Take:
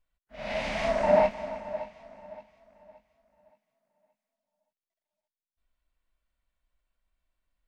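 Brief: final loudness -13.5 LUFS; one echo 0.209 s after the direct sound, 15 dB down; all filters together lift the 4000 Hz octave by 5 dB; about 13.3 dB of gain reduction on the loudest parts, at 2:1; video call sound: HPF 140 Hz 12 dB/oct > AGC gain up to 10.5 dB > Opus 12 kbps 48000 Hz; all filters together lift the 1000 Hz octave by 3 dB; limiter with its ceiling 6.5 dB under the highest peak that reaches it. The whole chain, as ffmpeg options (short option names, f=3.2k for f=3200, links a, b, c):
-af "equalizer=f=1k:t=o:g=3.5,equalizer=f=4k:t=o:g=6.5,acompressor=threshold=-40dB:ratio=2,alimiter=level_in=4.5dB:limit=-24dB:level=0:latency=1,volume=-4.5dB,highpass=140,aecho=1:1:209:0.178,dynaudnorm=m=10.5dB,volume=26.5dB" -ar 48000 -c:a libopus -b:a 12k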